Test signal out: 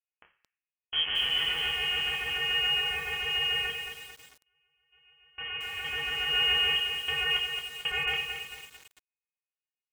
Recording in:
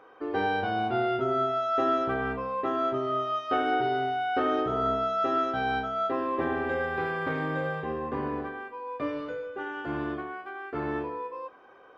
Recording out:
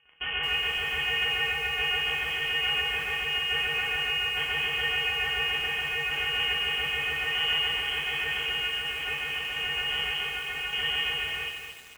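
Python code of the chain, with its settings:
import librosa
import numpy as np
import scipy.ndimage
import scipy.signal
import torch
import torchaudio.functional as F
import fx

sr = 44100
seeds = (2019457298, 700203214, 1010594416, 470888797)

p1 = np.r_[np.sort(x[:len(x) // 128 * 128].reshape(-1, 128), axis=1).ravel(), x[len(x) // 128 * 128:]]
p2 = scipy.signal.sosfilt(scipy.signal.butter(2, 56.0, 'highpass', fs=sr, output='sos'), p1)
p3 = fx.peak_eq(p2, sr, hz=850.0, db=6.5, octaves=1.7)
p4 = fx.notch(p3, sr, hz=1100.0, q=7.4)
p5 = fx.rotary(p4, sr, hz=7.0)
p6 = fx.fuzz(p5, sr, gain_db=51.0, gate_db=-45.0)
p7 = p5 + (p6 * 10.0 ** (-10.0 / 20.0))
p8 = fx.chorus_voices(p7, sr, voices=4, hz=0.45, base_ms=26, depth_ms=1.5, mix_pct=30)
p9 = fx.rev_fdn(p8, sr, rt60_s=0.62, lf_ratio=0.8, hf_ratio=0.55, size_ms=30.0, drr_db=2.5)
p10 = fx.freq_invert(p9, sr, carrier_hz=3200)
p11 = fx.echo_crushed(p10, sr, ms=223, feedback_pct=55, bits=6, wet_db=-6.5)
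y = p11 * 10.0 ** (-7.0 / 20.0)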